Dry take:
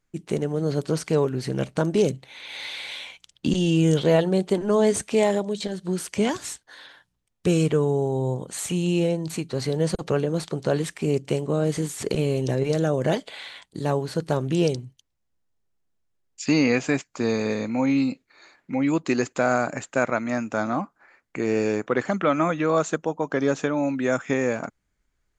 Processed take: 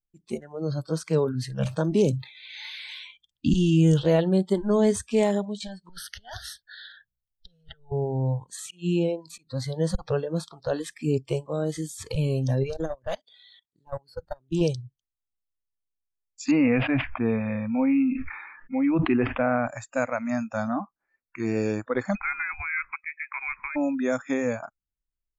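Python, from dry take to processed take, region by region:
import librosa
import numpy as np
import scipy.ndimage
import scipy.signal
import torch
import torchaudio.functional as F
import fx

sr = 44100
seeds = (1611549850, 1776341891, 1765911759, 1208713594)

y = fx.chain(x, sr, fx.highpass(hz=110.0, slope=24),
    fx.notch(hz=740.0, q=17.0),
    fx.sustainer(db_per_s=95.0), at=(1.09, 2.86))
y = fx.chain(y, sr, fx.over_compress(threshold_db=-28.0, ratio=-0.5),
    fx.fixed_phaser(hz=1600.0, stages=8), at=(5.89, 7.92))
y = fx.chain(y, sr, fx.highpass(hz=160.0, slope=12),
    fx.high_shelf(hz=7300.0, db=-6.0),
    fx.auto_swell(attack_ms=167.0), at=(8.56, 9.47))
y = fx.chain(y, sr, fx.highpass(hz=82.0, slope=12),
    fx.clip_hard(threshold_db=-15.0),
    fx.level_steps(step_db=23), at=(12.7, 14.61))
y = fx.chain(y, sr, fx.steep_lowpass(hz=2900.0, slope=36),
    fx.sustainer(db_per_s=40.0), at=(16.51, 19.67))
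y = fx.chain(y, sr, fx.highpass(hz=740.0, slope=6),
    fx.freq_invert(carrier_hz=2700), at=(22.15, 23.76))
y = fx.tilt_eq(y, sr, slope=-3.0)
y = fx.noise_reduce_blind(y, sr, reduce_db=23)
y = fx.high_shelf(y, sr, hz=2700.0, db=11.0)
y = y * 10.0 ** (-5.5 / 20.0)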